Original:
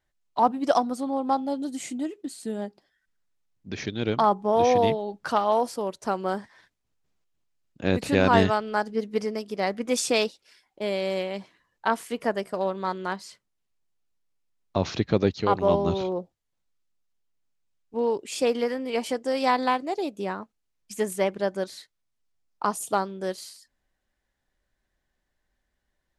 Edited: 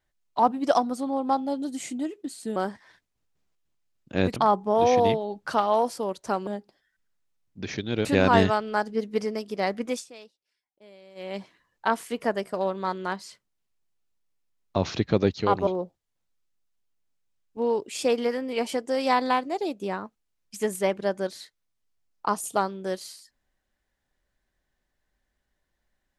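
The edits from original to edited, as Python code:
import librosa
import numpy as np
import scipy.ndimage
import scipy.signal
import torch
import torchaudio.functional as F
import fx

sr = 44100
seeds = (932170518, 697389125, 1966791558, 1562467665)

y = fx.edit(x, sr, fx.swap(start_s=2.56, length_s=1.58, other_s=6.25, other_length_s=1.8),
    fx.fade_down_up(start_s=9.84, length_s=1.52, db=-23.0, fade_s=0.21),
    fx.cut(start_s=15.67, length_s=0.37), tone=tone)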